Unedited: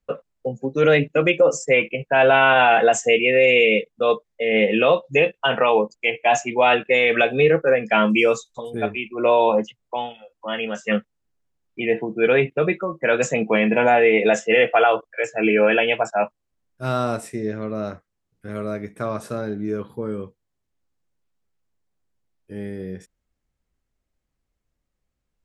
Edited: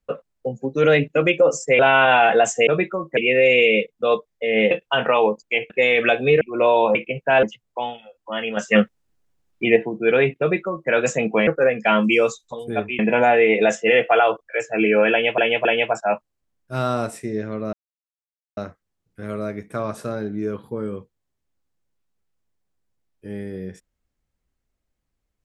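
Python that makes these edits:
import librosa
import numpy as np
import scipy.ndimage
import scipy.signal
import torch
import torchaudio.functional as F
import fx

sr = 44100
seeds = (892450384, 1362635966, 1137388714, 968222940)

y = fx.edit(x, sr, fx.move(start_s=1.79, length_s=0.48, to_s=9.59),
    fx.cut(start_s=4.69, length_s=0.54),
    fx.cut(start_s=6.22, length_s=0.6),
    fx.move(start_s=7.53, length_s=1.52, to_s=13.63),
    fx.clip_gain(start_s=10.73, length_s=1.19, db=6.0),
    fx.duplicate(start_s=12.56, length_s=0.5, to_s=3.15),
    fx.repeat(start_s=15.75, length_s=0.27, count=3),
    fx.insert_silence(at_s=17.83, length_s=0.84), tone=tone)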